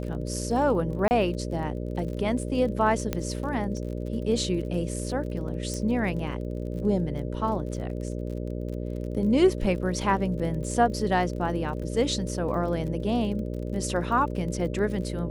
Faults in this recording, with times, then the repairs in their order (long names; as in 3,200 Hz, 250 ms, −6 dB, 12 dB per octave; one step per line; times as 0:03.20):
mains buzz 60 Hz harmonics 10 −32 dBFS
surface crackle 39 per second −36 dBFS
0:01.08–0:01.11: drop-out 29 ms
0:03.13: click −13 dBFS
0:05.74: click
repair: click removal
hum removal 60 Hz, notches 10
repair the gap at 0:01.08, 29 ms